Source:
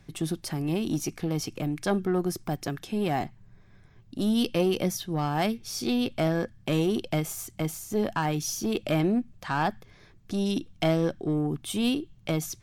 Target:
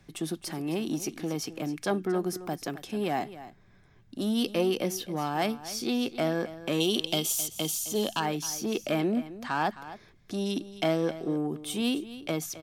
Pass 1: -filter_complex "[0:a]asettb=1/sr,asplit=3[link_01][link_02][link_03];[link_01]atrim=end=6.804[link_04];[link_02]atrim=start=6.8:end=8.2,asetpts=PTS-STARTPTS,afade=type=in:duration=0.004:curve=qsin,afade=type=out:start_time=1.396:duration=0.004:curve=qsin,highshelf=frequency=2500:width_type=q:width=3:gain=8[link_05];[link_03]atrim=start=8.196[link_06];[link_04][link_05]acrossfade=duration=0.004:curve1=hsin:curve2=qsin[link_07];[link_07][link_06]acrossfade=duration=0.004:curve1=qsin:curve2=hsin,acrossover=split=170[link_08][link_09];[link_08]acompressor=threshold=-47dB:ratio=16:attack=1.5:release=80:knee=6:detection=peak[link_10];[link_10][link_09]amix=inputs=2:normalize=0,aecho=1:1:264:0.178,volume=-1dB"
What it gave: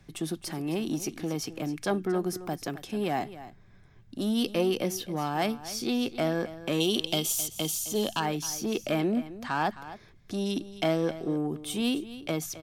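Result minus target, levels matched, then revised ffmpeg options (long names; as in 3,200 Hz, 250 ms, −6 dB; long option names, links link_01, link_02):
downward compressor: peak gain reduction −9 dB
-filter_complex "[0:a]asettb=1/sr,asplit=3[link_01][link_02][link_03];[link_01]atrim=end=6.804[link_04];[link_02]atrim=start=6.8:end=8.2,asetpts=PTS-STARTPTS,afade=type=in:duration=0.004:curve=qsin,afade=type=out:start_time=1.396:duration=0.004:curve=qsin,highshelf=frequency=2500:width_type=q:width=3:gain=8[link_05];[link_03]atrim=start=8.196[link_06];[link_04][link_05]acrossfade=duration=0.004:curve1=hsin:curve2=qsin[link_07];[link_07][link_06]acrossfade=duration=0.004:curve1=qsin:curve2=hsin,acrossover=split=170[link_08][link_09];[link_08]acompressor=threshold=-56.5dB:ratio=16:attack=1.5:release=80:knee=6:detection=peak[link_10];[link_10][link_09]amix=inputs=2:normalize=0,aecho=1:1:264:0.178,volume=-1dB"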